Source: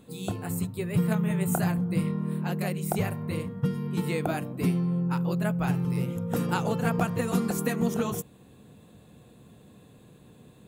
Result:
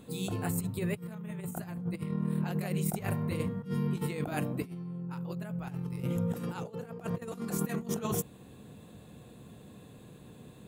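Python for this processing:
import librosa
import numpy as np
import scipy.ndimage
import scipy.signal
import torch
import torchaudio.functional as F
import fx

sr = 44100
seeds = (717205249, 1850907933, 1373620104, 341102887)

y = fx.peak_eq(x, sr, hz=440.0, db=8.5, octaves=0.57, at=(6.6, 7.32))
y = fx.over_compress(y, sr, threshold_db=-31.0, ratio=-0.5)
y = F.gain(torch.from_numpy(y), -2.5).numpy()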